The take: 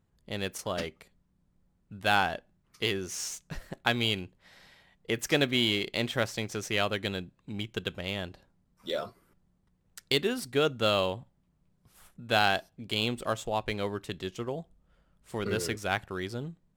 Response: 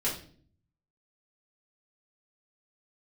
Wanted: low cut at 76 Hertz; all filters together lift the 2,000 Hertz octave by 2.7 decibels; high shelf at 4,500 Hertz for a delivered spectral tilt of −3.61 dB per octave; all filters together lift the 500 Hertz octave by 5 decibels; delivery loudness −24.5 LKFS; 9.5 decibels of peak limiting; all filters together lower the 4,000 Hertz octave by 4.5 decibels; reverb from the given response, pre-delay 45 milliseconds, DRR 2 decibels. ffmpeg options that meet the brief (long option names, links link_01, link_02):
-filter_complex "[0:a]highpass=76,equalizer=frequency=500:width_type=o:gain=6,equalizer=frequency=2000:width_type=o:gain=6,equalizer=frequency=4000:width_type=o:gain=-8,highshelf=frequency=4500:gain=-3,alimiter=limit=-15dB:level=0:latency=1,asplit=2[link_01][link_02];[1:a]atrim=start_sample=2205,adelay=45[link_03];[link_02][link_03]afir=irnorm=-1:irlink=0,volume=-9dB[link_04];[link_01][link_04]amix=inputs=2:normalize=0,volume=3.5dB"